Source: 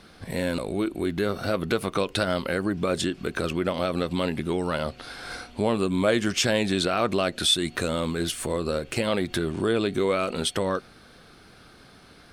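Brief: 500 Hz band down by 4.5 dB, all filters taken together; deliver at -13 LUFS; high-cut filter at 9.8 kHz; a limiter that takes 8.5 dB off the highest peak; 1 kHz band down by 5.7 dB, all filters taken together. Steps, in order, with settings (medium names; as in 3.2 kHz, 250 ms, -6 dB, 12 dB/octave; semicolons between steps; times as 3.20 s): low-pass 9.8 kHz; peaking EQ 500 Hz -4 dB; peaking EQ 1 kHz -7 dB; trim +17.5 dB; peak limiter -1.5 dBFS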